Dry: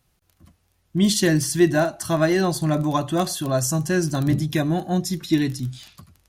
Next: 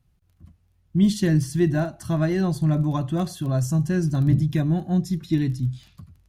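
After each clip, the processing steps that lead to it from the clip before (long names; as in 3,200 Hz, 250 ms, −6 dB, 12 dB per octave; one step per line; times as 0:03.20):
bass and treble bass +13 dB, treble −4 dB
level −8 dB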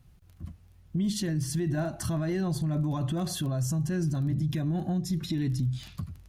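downward compressor, threshold −28 dBFS, peak gain reduction 14 dB
brickwall limiter −29.5 dBFS, peak gain reduction 9.5 dB
level +7.5 dB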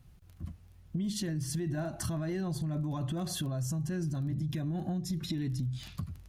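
downward compressor 3 to 1, threshold −32 dBFS, peak gain reduction 6 dB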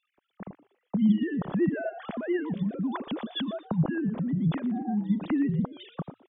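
three sine waves on the formant tracks
echo with shifted repeats 119 ms, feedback 30%, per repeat +100 Hz, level −18.5 dB
level +5.5 dB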